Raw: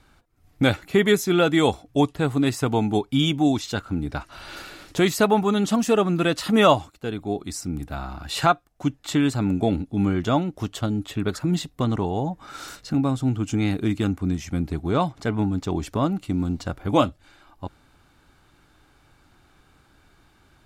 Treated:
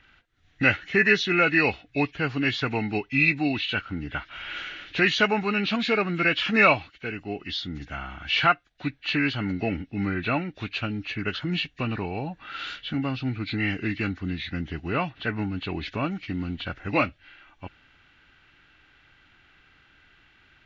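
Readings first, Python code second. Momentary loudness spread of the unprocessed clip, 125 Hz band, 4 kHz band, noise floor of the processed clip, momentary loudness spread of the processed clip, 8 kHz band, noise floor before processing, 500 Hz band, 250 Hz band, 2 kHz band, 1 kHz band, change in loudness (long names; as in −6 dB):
12 LU, −6.0 dB, +0.5 dB, −60 dBFS, 14 LU, below −10 dB, −59 dBFS, −6.0 dB, −6.0 dB, +7.5 dB, −3.5 dB, −2.5 dB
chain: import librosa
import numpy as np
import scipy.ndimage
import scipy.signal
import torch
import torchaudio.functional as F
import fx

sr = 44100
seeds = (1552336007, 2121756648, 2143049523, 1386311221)

y = fx.freq_compress(x, sr, knee_hz=1500.0, ratio=1.5)
y = fx.band_shelf(y, sr, hz=2400.0, db=13.5, octaves=1.7)
y = y * librosa.db_to_amplitude(-6.0)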